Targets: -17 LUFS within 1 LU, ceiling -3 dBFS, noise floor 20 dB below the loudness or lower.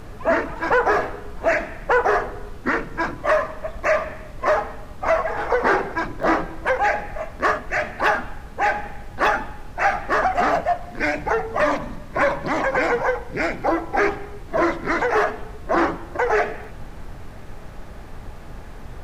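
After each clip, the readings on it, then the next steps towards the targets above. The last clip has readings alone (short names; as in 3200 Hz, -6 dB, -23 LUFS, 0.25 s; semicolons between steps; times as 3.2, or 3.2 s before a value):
dropouts 2; longest dropout 1.7 ms; noise floor -38 dBFS; noise floor target -42 dBFS; loudness -22.0 LUFS; peak -6.0 dBFS; loudness target -17.0 LUFS
-> interpolate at 6.23/16.64, 1.7 ms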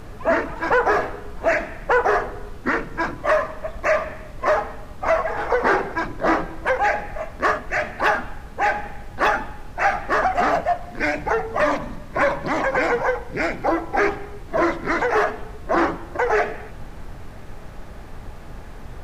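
dropouts 0; noise floor -38 dBFS; noise floor target -42 dBFS
-> noise print and reduce 6 dB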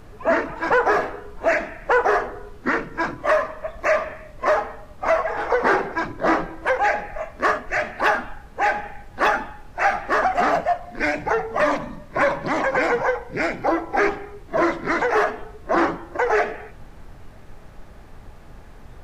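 noise floor -43 dBFS; loudness -22.0 LUFS; peak -6.5 dBFS; loudness target -17.0 LUFS
-> gain +5 dB; limiter -3 dBFS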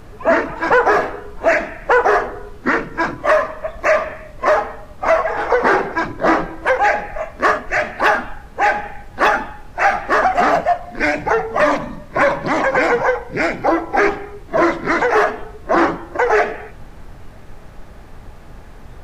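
loudness -17.0 LUFS; peak -3.0 dBFS; noise floor -38 dBFS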